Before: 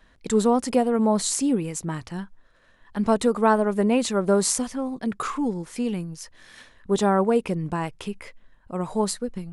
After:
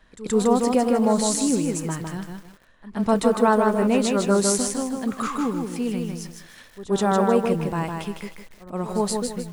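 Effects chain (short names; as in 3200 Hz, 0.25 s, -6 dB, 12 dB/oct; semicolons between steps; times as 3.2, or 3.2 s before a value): reverse echo 0.126 s -16.5 dB; lo-fi delay 0.156 s, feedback 35%, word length 8-bit, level -4 dB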